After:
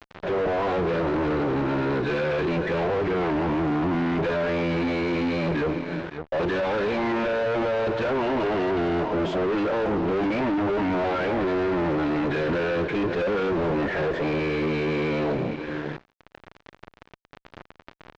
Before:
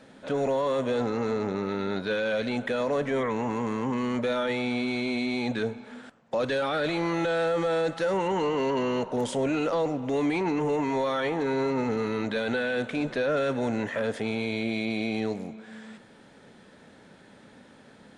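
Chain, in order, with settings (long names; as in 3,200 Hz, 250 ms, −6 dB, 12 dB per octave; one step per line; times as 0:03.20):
phase-vocoder pitch shift with formants kept −6.5 semitones
high-pass filter 160 Hz 6 dB per octave
notch filter 1,200 Hz, Q 6.2
single-tap delay 549 ms −17.5 dB
fuzz pedal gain 42 dB, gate −47 dBFS
high-shelf EQ 2,900 Hz −10.5 dB
upward compression, threshold −20 dBFS
high-frequency loss of the air 190 metres
level −8.5 dB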